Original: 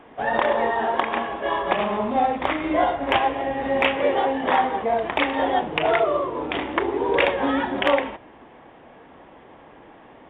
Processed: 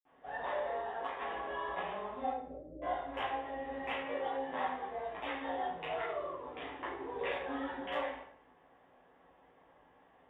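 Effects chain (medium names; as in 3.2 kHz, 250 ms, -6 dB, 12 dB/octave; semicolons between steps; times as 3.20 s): 2.25–2.77 s: steep low-pass 610 Hz 96 dB/octave; reverberation RT60 0.60 s, pre-delay 51 ms; 1.21–1.75 s: level flattener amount 70%; trim +1 dB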